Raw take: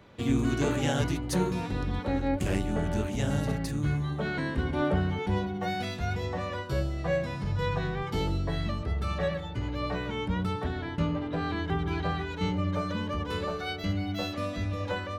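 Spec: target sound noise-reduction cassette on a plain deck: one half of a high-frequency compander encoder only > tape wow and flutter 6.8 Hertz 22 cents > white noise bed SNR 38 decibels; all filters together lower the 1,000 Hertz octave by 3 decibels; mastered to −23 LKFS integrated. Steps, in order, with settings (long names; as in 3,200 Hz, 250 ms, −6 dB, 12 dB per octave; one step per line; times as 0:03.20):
parametric band 1,000 Hz −4 dB
one half of a high-frequency compander encoder only
tape wow and flutter 6.8 Hz 22 cents
white noise bed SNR 38 dB
level +8 dB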